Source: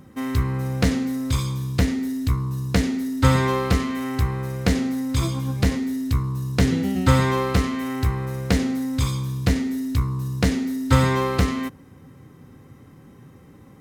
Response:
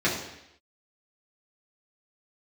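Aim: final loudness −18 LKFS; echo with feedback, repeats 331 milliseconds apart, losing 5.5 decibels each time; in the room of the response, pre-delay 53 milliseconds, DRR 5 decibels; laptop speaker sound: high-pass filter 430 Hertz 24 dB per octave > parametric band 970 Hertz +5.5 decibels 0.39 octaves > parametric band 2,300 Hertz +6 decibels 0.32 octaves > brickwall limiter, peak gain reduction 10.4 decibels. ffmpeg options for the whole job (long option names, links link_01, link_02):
-filter_complex "[0:a]aecho=1:1:331|662|993|1324|1655|1986|2317:0.531|0.281|0.149|0.079|0.0419|0.0222|0.0118,asplit=2[link_01][link_02];[1:a]atrim=start_sample=2205,adelay=53[link_03];[link_02][link_03]afir=irnorm=-1:irlink=0,volume=-19dB[link_04];[link_01][link_04]amix=inputs=2:normalize=0,highpass=frequency=430:width=0.5412,highpass=frequency=430:width=1.3066,equalizer=frequency=970:width_type=o:width=0.39:gain=5.5,equalizer=frequency=2300:width_type=o:width=0.32:gain=6,volume=10.5dB,alimiter=limit=-6.5dB:level=0:latency=1"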